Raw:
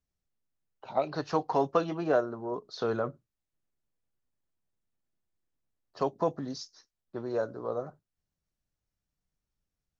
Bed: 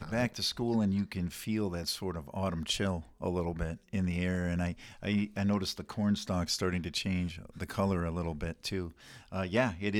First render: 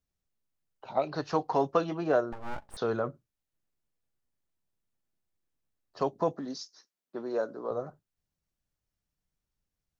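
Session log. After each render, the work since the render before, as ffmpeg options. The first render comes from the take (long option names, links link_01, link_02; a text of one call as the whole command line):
ffmpeg -i in.wav -filter_complex "[0:a]asettb=1/sr,asplit=3[link_01][link_02][link_03];[link_01]atrim=end=2.324[link_04];[link_02]atrim=start=2.32:end=2.77,asetpts=PTS-STARTPTS,afade=type=in:duration=0.004:curve=qsin,afade=type=out:start_time=0.446:duration=0.004:curve=qsin,aeval=exprs='abs(val(0))':channel_layout=same[link_05];[link_03]atrim=start=2.766[link_06];[link_04][link_05]acrossfade=duration=0.004:curve1=hsin:curve2=qsin[link_07];[link_07][link_06]acrossfade=duration=0.004:curve1=qsin:curve2=hsin,asettb=1/sr,asplit=3[link_08][link_09][link_10];[link_08]atrim=end=6.334[link_11];[link_09]atrim=start=6.33:end=7.71,asetpts=PTS-STARTPTS,afade=type=in:duration=0.004:curve=qsin,afade=type=out:start_time=1.376:duration=0.004:curve=qsin,highpass=frequency=180:width=0.5412,highpass=frequency=180:width=1.3066[link_12];[link_10]atrim=start=7.706[link_13];[link_11][link_12]acrossfade=duration=0.004:curve1=hsin:curve2=qsin[link_14];[link_14][link_13]acrossfade=duration=0.004:curve1=qsin:curve2=hsin" out.wav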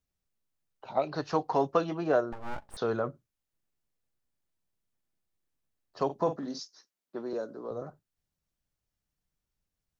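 ffmpeg -i in.wav -filter_complex "[0:a]asettb=1/sr,asplit=3[link_01][link_02][link_03];[link_01]atrim=end=6.054[link_04];[link_02]atrim=start=6.05:end=6.6,asetpts=PTS-STARTPTS,afade=type=in:duration=0.004:curve=qsin,afade=type=out:start_time=0.546:duration=0.004:curve=qsin,asplit=2[link_05][link_06];[link_06]adelay=44,volume=-9dB[link_07];[link_05][link_07]amix=inputs=2:normalize=0,atrim=end_sample=24255[link_08];[link_03]atrim=start=6.596[link_09];[link_04][link_08]acrossfade=duration=0.004:curve1=hsin:curve2=qsin[link_10];[link_10][link_09]acrossfade=duration=0.004:curve1=qsin:curve2=hsin,asettb=1/sr,asplit=3[link_11][link_12][link_13];[link_11]atrim=end=7.334[link_14];[link_12]atrim=start=7.33:end=7.82,asetpts=PTS-STARTPTS,afade=type=in:duration=0.004:curve=qsin,afade=type=out:start_time=0.486:duration=0.004:curve=qsin,acrossover=split=420|3000[link_15][link_16][link_17];[link_16]acompressor=threshold=-52dB:ratio=1.5:attack=3.2:release=140:knee=2.83:detection=peak[link_18];[link_15][link_18][link_17]amix=inputs=3:normalize=0[link_19];[link_13]atrim=start=7.816[link_20];[link_14][link_19]acrossfade=duration=0.004:curve1=hsin:curve2=qsin[link_21];[link_21][link_20]acrossfade=duration=0.004:curve1=qsin:curve2=hsin" out.wav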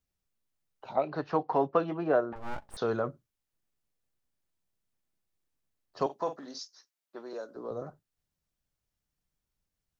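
ffmpeg -i in.wav -filter_complex "[0:a]asettb=1/sr,asplit=3[link_01][link_02][link_03];[link_01]atrim=end=0.964[link_04];[link_02]atrim=start=0.96:end=2.36,asetpts=PTS-STARTPTS,afade=type=in:duration=0.004:curve=qsin,afade=type=out:start_time=1.396:duration=0.004:curve=qsin,highpass=120,lowpass=2600[link_05];[link_03]atrim=start=2.356[link_06];[link_04][link_05]acrossfade=duration=0.004:curve1=hsin:curve2=qsin[link_07];[link_07][link_06]acrossfade=duration=0.004:curve1=qsin:curve2=hsin,asettb=1/sr,asplit=3[link_08][link_09][link_10];[link_08]atrim=end=6.064[link_11];[link_09]atrim=start=6.06:end=7.56,asetpts=PTS-STARTPTS,afade=type=in:duration=0.004:curve=qsin,afade=type=out:start_time=1.496:duration=0.004:curve=qsin,highpass=frequency=720:poles=1[link_12];[link_10]atrim=start=7.556[link_13];[link_11][link_12]acrossfade=duration=0.004:curve1=hsin:curve2=qsin[link_14];[link_14][link_13]acrossfade=duration=0.004:curve1=qsin:curve2=hsin" out.wav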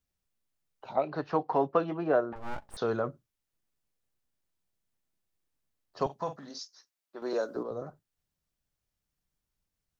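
ffmpeg -i in.wav -filter_complex "[0:a]asplit=3[link_01][link_02][link_03];[link_01]afade=type=out:start_time=6.04:duration=0.02[link_04];[link_02]asubboost=boost=11.5:cutoff=100,afade=type=in:start_time=6.04:duration=0.02,afade=type=out:start_time=6.49:duration=0.02[link_05];[link_03]afade=type=in:start_time=6.49:duration=0.02[link_06];[link_04][link_05][link_06]amix=inputs=3:normalize=0,asplit=3[link_07][link_08][link_09];[link_07]atrim=end=7.222[link_10];[link_08]atrim=start=7.218:end=7.632,asetpts=PTS-STARTPTS,volume=9dB[link_11];[link_09]atrim=start=7.628[link_12];[link_10][link_11]acrossfade=duration=0.004:curve1=hsin:curve2=hsin[link_13];[link_13][link_12]acrossfade=duration=0.004:curve1=hsin:curve2=hsin" out.wav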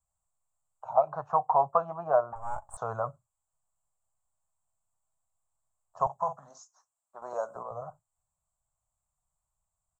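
ffmpeg -i in.wav -af "firequalizer=gain_entry='entry(120,0);entry(300,-24);entry(650,6);entry(1100,7);entry(1900,-18);entry(4700,-25);entry(7500,12);entry(11000,-9)':delay=0.05:min_phase=1" out.wav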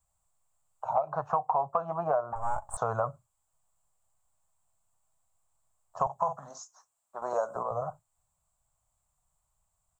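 ffmpeg -i in.wav -filter_complex "[0:a]asplit=2[link_01][link_02];[link_02]alimiter=limit=-19.5dB:level=0:latency=1:release=79,volume=1.5dB[link_03];[link_01][link_03]amix=inputs=2:normalize=0,acompressor=threshold=-25dB:ratio=4" out.wav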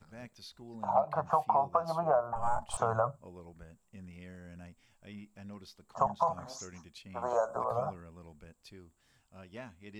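ffmpeg -i in.wav -i bed.wav -filter_complex "[1:a]volume=-17.5dB[link_01];[0:a][link_01]amix=inputs=2:normalize=0" out.wav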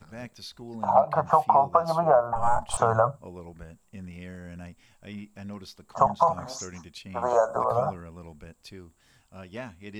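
ffmpeg -i in.wav -af "volume=8dB" out.wav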